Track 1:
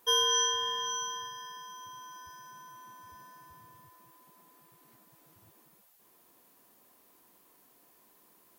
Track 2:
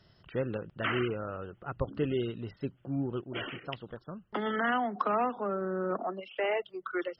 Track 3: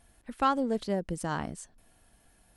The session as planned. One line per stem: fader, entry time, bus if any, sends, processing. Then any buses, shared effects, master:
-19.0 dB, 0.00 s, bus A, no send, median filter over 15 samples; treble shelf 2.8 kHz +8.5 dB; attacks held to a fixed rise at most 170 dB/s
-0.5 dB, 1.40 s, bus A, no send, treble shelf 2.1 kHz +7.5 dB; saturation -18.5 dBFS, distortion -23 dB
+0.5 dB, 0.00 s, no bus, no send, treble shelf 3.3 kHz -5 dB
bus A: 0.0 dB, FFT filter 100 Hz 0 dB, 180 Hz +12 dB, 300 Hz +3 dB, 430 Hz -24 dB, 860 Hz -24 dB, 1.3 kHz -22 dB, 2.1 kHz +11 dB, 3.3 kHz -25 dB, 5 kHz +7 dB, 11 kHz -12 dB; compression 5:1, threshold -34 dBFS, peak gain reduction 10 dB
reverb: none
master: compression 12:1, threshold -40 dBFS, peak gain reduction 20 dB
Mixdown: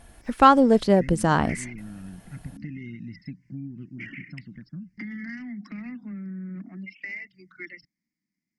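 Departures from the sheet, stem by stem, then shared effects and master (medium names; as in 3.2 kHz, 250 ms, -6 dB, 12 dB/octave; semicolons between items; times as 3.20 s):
stem 2: entry 1.40 s -> 0.65 s; stem 3 +0.5 dB -> +12.0 dB; master: missing compression 12:1, threshold -40 dBFS, peak gain reduction 20 dB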